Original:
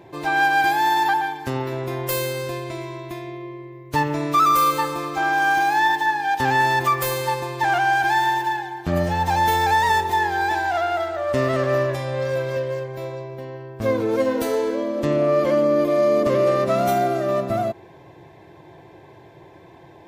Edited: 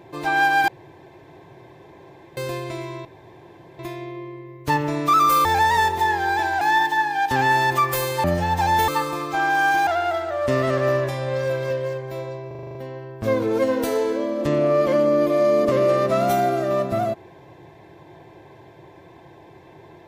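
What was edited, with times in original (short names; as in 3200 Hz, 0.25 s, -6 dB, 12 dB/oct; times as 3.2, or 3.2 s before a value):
0.68–2.37 room tone
3.05 insert room tone 0.74 s
4.71–5.7 swap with 9.57–10.73
7.33–8.93 cut
13.33 stutter 0.04 s, 8 plays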